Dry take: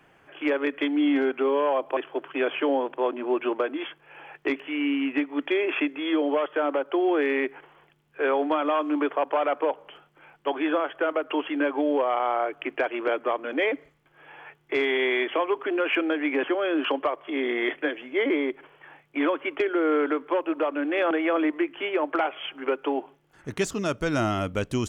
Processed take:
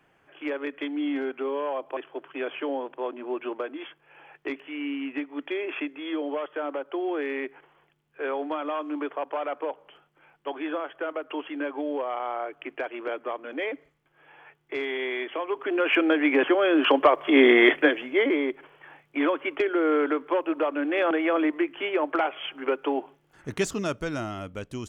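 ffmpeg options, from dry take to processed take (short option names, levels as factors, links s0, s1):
-af "volume=3.55,afade=t=in:st=15.42:d=0.69:silence=0.316228,afade=t=in:st=16.79:d=0.62:silence=0.446684,afade=t=out:st=17.41:d=0.89:silence=0.281838,afade=t=out:st=23.73:d=0.53:silence=0.375837"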